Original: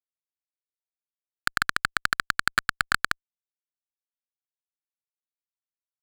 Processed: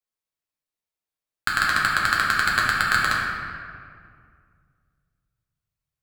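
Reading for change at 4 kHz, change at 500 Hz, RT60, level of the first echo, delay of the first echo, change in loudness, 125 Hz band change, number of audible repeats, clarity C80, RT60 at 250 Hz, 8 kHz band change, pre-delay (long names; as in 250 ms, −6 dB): +4.5 dB, +7.5 dB, 2.1 s, no echo audible, no echo audible, +5.5 dB, +8.0 dB, no echo audible, 1.5 dB, 2.5 s, +3.5 dB, 5 ms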